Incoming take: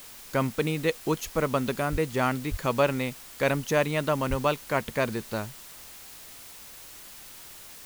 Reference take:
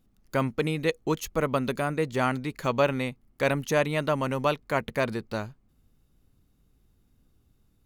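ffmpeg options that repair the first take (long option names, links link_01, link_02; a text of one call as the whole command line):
ffmpeg -i in.wav -filter_complex "[0:a]asplit=3[link_01][link_02][link_03];[link_01]afade=type=out:start_time=1.91:duration=0.02[link_04];[link_02]highpass=frequency=140:width=0.5412,highpass=frequency=140:width=1.3066,afade=type=in:start_time=1.91:duration=0.02,afade=type=out:start_time=2.03:duration=0.02[link_05];[link_03]afade=type=in:start_time=2.03:duration=0.02[link_06];[link_04][link_05][link_06]amix=inputs=3:normalize=0,asplit=3[link_07][link_08][link_09];[link_07]afade=type=out:start_time=2.5:duration=0.02[link_10];[link_08]highpass=frequency=140:width=0.5412,highpass=frequency=140:width=1.3066,afade=type=in:start_time=2.5:duration=0.02,afade=type=out:start_time=2.62:duration=0.02[link_11];[link_09]afade=type=in:start_time=2.62:duration=0.02[link_12];[link_10][link_11][link_12]amix=inputs=3:normalize=0,asplit=3[link_13][link_14][link_15];[link_13]afade=type=out:start_time=4.29:duration=0.02[link_16];[link_14]highpass=frequency=140:width=0.5412,highpass=frequency=140:width=1.3066,afade=type=in:start_time=4.29:duration=0.02,afade=type=out:start_time=4.41:duration=0.02[link_17];[link_15]afade=type=in:start_time=4.41:duration=0.02[link_18];[link_16][link_17][link_18]amix=inputs=3:normalize=0,afwtdn=0.005" out.wav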